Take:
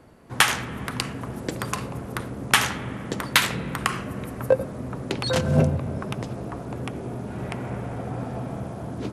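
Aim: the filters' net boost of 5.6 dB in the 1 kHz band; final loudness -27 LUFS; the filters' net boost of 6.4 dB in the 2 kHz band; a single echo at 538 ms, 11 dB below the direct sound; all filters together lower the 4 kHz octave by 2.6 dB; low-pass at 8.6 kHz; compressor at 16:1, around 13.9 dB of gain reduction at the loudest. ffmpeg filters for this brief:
-af "lowpass=8600,equalizer=f=1000:t=o:g=5,equalizer=f=2000:t=o:g=8,equalizer=f=4000:t=o:g=-7.5,acompressor=threshold=0.0794:ratio=16,aecho=1:1:538:0.282,volume=1.41"

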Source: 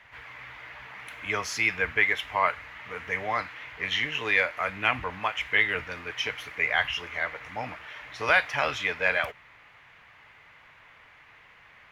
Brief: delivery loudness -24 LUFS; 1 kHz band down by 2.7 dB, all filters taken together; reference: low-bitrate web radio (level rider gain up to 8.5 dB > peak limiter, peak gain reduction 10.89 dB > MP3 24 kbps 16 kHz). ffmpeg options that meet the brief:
-af "equalizer=f=1000:t=o:g=-3.5,dynaudnorm=m=2.66,alimiter=limit=0.1:level=0:latency=1,volume=2.82" -ar 16000 -c:a libmp3lame -b:a 24k

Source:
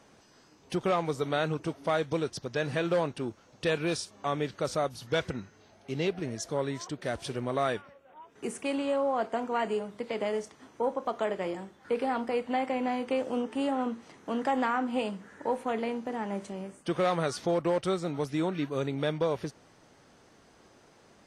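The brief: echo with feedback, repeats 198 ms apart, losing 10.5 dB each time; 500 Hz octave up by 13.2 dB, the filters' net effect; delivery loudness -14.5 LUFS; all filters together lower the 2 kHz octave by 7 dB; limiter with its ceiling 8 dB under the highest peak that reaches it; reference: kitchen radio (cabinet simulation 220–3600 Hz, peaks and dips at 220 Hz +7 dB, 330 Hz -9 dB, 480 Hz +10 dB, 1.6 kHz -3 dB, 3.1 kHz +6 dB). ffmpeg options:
-af "equalizer=f=500:t=o:g=8.5,equalizer=f=2000:t=o:g=-9,alimiter=limit=0.106:level=0:latency=1,highpass=220,equalizer=f=220:t=q:w=4:g=7,equalizer=f=330:t=q:w=4:g=-9,equalizer=f=480:t=q:w=4:g=10,equalizer=f=1600:t=q:w=4:g=-3,equalizer=f=3100:t=q:w=4:g=6,lowpass=f=3600:w=0.5412,lowpass=f=3600:w=1.3066,aecho=1:1:198|396|594:0.299|0.0896|0.0269,volume=3.16"

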